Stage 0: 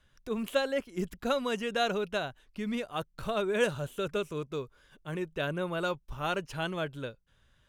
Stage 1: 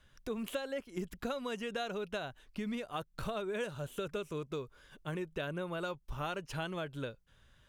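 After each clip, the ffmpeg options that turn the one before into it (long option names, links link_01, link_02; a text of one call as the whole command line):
ffmpeg -i in.wav -af "acompressor=threshold=-37dB:ratio=6,volume=2dB" out.wav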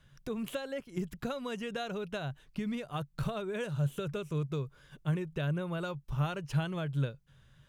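ffmpeg -i in.wav -af "equalizer=frequency=140:width=2.6:gain=15" out.wav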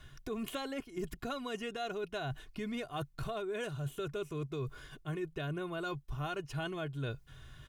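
ffmpeg -i in.wav -af "aecho=1:1:2.8:0.59,areverse,acompressor=threshold=-44dB:ratio=6,areverse,volume=8dB" out.wav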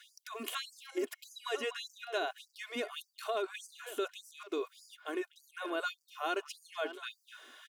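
ffmpeg -i in.wav -filter_complex "[0:a]asplit=2[link_01][link_02];[link_02]adelay=250,highpass=300,lowpass=3400,asoftclip=type=hard:threshold=-32dB,volume=-11dB[link_03];[link_01][link_03]amix=inputs=2:normalize=0,afftfilt=real='re*gte(b*sr/1024,240*pow(4600/240,0.5+0.5*sin(2*PI*1.7*pts/sr)))':imag='im*gte(b*sr/1024,240*pow(4600/240,0.5+0.5*sin(2*PI*1.7*pts/sr)))':win_size=1024:overlap=0.75,volume=5dB" out.wav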